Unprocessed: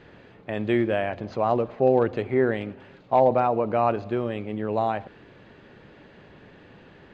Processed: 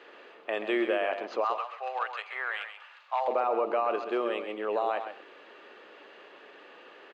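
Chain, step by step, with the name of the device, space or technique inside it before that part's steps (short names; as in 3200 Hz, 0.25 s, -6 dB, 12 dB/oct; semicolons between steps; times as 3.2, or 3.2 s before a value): 1.44–3.28 HPF 920 Hz 24 dB/oct; laptop speaker (HPF 370 Hz 24 dB/oct; bell 1200 Hz +8 dB 0.21 oct; bell 2800 Hz +5 dB 0.38 oct; limiter -18.5 dBFS, peak gain reduction 10.5 dB); echo 0.132 s -9 dB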